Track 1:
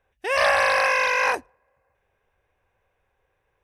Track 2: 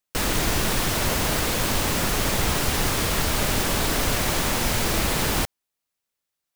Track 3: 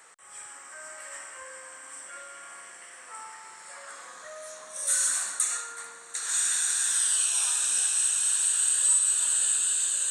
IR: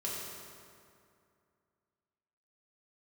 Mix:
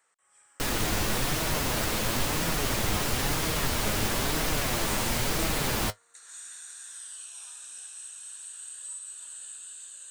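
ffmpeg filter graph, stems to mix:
-filter_complex "[1:a]flanger=delay=6.2:depth=3.4:regen=56:speed=1:shape=sinusoidal,adelay=450,volume=-0.5dB[a];[2:a]volume=-17.5dB[b];[a][b]amix=inputs=2:normalize=0"

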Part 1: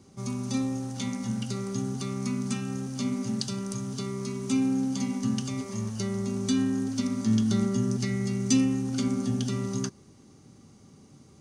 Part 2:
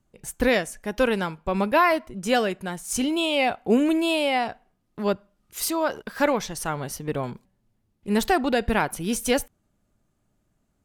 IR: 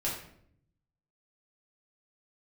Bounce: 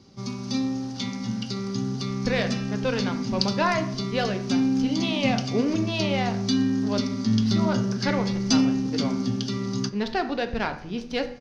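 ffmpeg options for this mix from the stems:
-filter_complex "[0:a]volume=1dB,asplit=2[a][b];[b]volume=-17.5dB[c];[1:a]adynamicsmooth=sensitivity=2.5:basefreq=2.1k,adelay=1850,volume=-6.5dB,asplit=2[d][e];[e]volume=-12dB[f];[2:a]atrim=start_sample=2205[g];[c][f]amix=inputs=2:normalize=0[h];[h][g]afir=irnorm=-1:irlink=0[i];[a][d][i]amix=inputs=3:normalize=0,highshelf=f=6.5k:t=q:w=3:g=-11,bandreject=f=82.36:t=h:w=4,bandreject=f=164.72:t=h:w=4,bandreject=f=247.08:t=h:w=4,bandreject=f=329.44:t=h:w=4,bandreject=f=411.8:t=h:w=4,bandreject=f=494.16:t=h:w=4,bandreject=f=576.52:t=h:w=4,bandreject=f=658.88:t=h:w=4,bandreject=f=741.24:t=h:w=4,bandreject=f=823.6:t=h:w=4,bandreject=f=905.96:t=h:w=4,bandreject=f=988.32:t=h:w=4,bandreject=f=1.07068k:t=h:w=4,bandreject=f=1.15304k:t=h:w=4,bandreject=f=1.2354k:t=h:w=4,bandreject=f=1.31776k:t=h:w=4,bandreject=f=1.40012k:t=h:w=4,bandreject=f=1.48248k:t=h:w=4,bandreject=f=1.56484k:t=h:w=4,bandreject=f=1.6472k:t=h:w=4,bandreject=f=1.72956k:t=h:w=4,bandreject=f=1.81192k:t=h:w=4,bandreject=f=1.89428k:t=h:w=4,bandreject=f=1.97664k:t=h:w=4,bandreject=f=2.059k:t=h:w=4,bandreject=f=2.14136k:t=h:w=4,bandreject=f=2.22372k:t=h:w=4,bandreject=f=2.30608k:t=h:w=4,bandreject=f=2.38844k:t=h:w=4,bandreject=f=2.4708k:t=h:w=4,bandreject=f=2.55316k:t=h:w=4"

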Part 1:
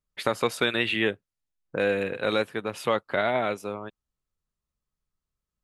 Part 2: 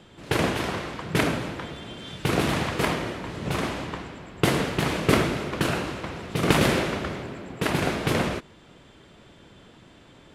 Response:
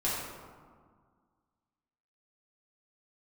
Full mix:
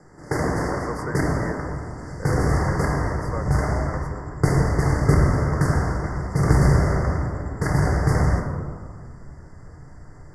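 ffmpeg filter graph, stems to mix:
-filter_complex "[0:a]adelay=450,volume=-7.5dB[a];[1:a]asubboost=boost=6.5:cutoff=100,volume=-3dB,asplit=2[b][c];[c]volume=-5dB[d];[2:a]atrim=start_sample=2205[e];[d][e]afir=irnorm=-1:irlink=0[f];[a][b][f]amix=inputs=3:normalize=0,lowpass=f=11k:w=0.5412,lowpass=f=11k:w=1.3066,acrossover=split=390[g][h];[h]acompressor=threshold=-23dB:ratio=6[i];[g][i]amix=inputs=2:normalize=0,asuperstop=centerf=3100:order=20:qfactor=1.2"

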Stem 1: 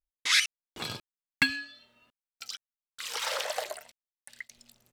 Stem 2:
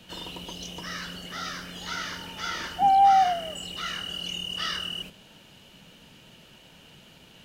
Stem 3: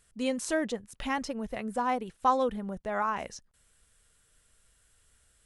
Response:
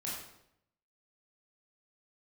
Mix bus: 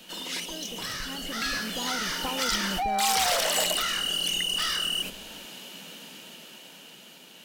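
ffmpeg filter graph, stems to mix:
-filter_complex "[0:a]dynaudnorm=f=420:g=7:m=11.5dB,volume=-18dB[a];[1:a]highpass=f=200:w=0.5412,highpass=f=200:w=1.3066,acompressor=threshold=-33dB:ratio=6,asoftclip=type=tanh:threshold=-34dB,volume=1.5dB[b];[2:a]aemphasis=mode=reproduction:type=riaa,acompressor=threshold=-31dB:ratio=6,volume=-19dB[c];[a][c]amix=inputs=2:normalize=0,dynaudnorm=f=190:g=5:m=11dB,alimiter=level_in=2.5dB:limit=-24dB:level=0:latency=1:release=25,volume=-2.5dB,volume=0dB[d];[b][d]amix=inputs=2:normalize=0,highshelf=f=5.5k:g=9.5,dynaudnorm=f=500:g=7:m=7.5dB"

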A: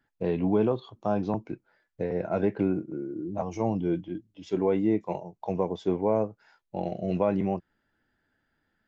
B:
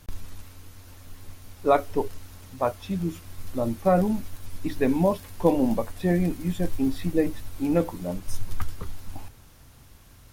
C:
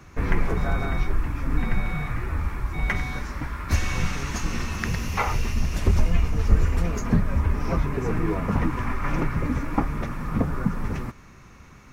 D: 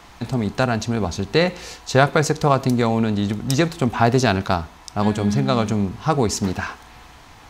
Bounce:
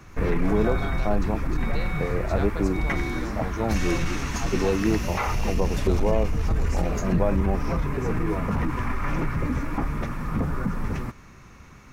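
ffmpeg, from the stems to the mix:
-filter_complex "[0:a]volume=0.5dB[a];[1:a]volume=-19dB[b];[2:a]asoftclip=type=tanh:threshold=-11dB,alimiter=limit=-17.5dB:level=0:latency=1:release=18,volume=0.5dB[c];[3:a]adelay=400,volume=-19.5dB[d];[a][b][c][d]amix=inputs=4:normalize=0"

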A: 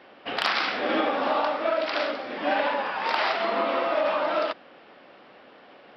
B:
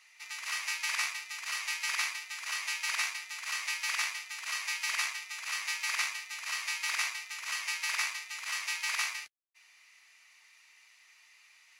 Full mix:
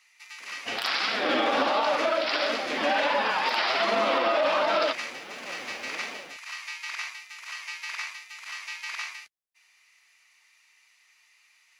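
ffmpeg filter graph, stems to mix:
-filter_complex "[0:a]aemphasis=mode=production:type=75fm,dynaudnorm=f=230:g=3:m=14dB,flanger=delay=4.4:depth=4.5:regen=43:speed=1.4:shape=sinusoidal,adelay=400,volume=-1dB[a];[1:a]acrossover=split=5600[b][c];[c]acompressor=threshold=-52dB:ratio=4:attack=1:release=60[d];[b][d]amix=inputs=2:normalize=0,volume=-1.5dB[e];[a][e]amix=inputs=2:normalize=0,alimiter=limit=-15.5dB:level=0:latency=1:release=76"

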